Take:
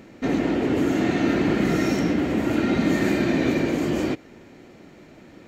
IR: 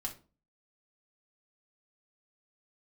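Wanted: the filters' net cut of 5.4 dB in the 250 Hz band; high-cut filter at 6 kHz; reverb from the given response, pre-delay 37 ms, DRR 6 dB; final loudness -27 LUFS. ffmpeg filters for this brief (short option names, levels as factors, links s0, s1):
-filter_complex "[0:a]lowpass=6000,equalizer=f=250:t=o:g=-7,asplit=2[s0][s1];[1:a]atrim=start_sample=2205,adelay=37[s2];[s1][s2]afir=irnorm=-1:irlink=0,volume=0.531[s3];[s0][s3]amix=inputs=2:normalize=0,volume=0.794"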